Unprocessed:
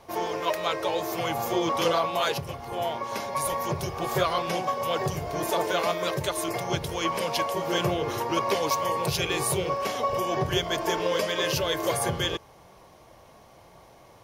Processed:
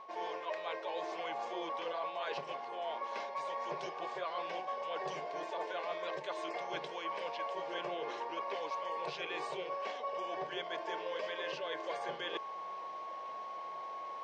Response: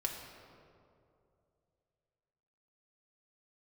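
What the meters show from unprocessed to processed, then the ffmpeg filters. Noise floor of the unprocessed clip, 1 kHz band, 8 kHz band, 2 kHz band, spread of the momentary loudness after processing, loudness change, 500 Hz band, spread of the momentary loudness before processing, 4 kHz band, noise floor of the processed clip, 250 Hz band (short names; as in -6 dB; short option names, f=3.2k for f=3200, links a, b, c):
-53 dBFS, -10.0 dB, -26.5 dB, -10.5 dB, 4 LU, -12.5 dB, -12.0 dB, 5 LU, -14.5 dB, -45 dBFS, -18.0 dB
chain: -filter_complex "[0:a]acrossover=split=460 4500:gain=0.0631 1 0.0708[a][b][c];[a][b][c]amix=inputs=3:normalize=0,aeval=exprs='val(0)+0.00562*sin(2*PI*1100*n/s)':c=same,equalizer=f=220:t=o:w=1.9:g=5,acrossover=split=2900[d][e];[e]acompressor=threshold=-41dB:ratio=4:attack=1:release=60[f];[d][f]amix=inputs=2:normalize=0,bandreject=f=1.3k:w=6.4,areverse,acompressor=threshold=-43dB:ratio=5,areverse,afftfilt=real='re*between(b*sr/4096,130,8700)':imag='im*between(b*sr/4096,130,8700)':win_size=4096:overlap=0.75,volume=4.5dB"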